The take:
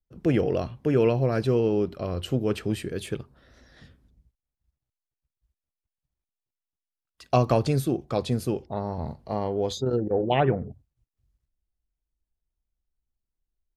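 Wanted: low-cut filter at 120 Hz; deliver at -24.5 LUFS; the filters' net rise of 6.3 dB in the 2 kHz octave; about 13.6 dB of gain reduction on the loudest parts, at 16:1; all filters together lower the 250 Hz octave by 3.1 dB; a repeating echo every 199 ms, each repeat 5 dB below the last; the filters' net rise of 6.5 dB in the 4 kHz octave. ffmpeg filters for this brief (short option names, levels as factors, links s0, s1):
-af "highpass=120,equalizer=f=250:t=o:g=-4,equalizer=f=2000:t=o:g=6.5,equalizer=f=4000:t=o:g=6,acompressor=threshold=0.0316:ratio=16,aecho=1:1:199|398|597|796|995|1194|1393:0.562|0.315|0.176|0.0988|0.0553|0.031|0.0173,volume=3.35"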